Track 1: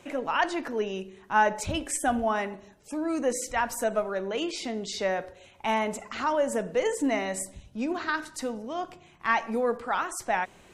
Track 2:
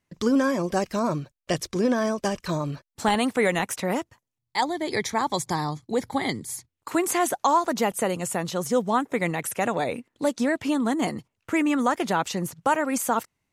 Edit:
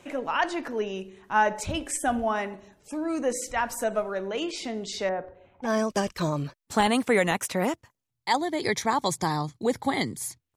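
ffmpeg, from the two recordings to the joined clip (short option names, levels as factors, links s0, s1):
-filter_complex "[0:a]asettb=1/sr,asplit=3[s0][s1][s2];[s0]atrim=end=5.094[s3];[s1]atrim=start=5.09:end=5.7,asetpts=PTS-STARTPTS,afade=t=in:d=0.004:c=qsin,afade=t=out:st=0.606:d=0.004:c=qsin,lowpass=1300[s4];[s2]atrim=start=5.696[s5];[s3][s4]acrossfade=d=0.004:c1=hsin:c2=qsin[s6];[s6][s5]acrossfade=d=0.004:c1=qsin:c2=hsin,apad=whole_dur=10.56,atrim=end=10.56,atrim=end=5.7,asetpts=PTS-STARTPTS[s7];[1:a]atrim=start=1.9:end=6.84,asetpts=PTS-STARTPTS[s8];[s7][s8]acrossfade=d=0.08:c1=tri:c2=tri"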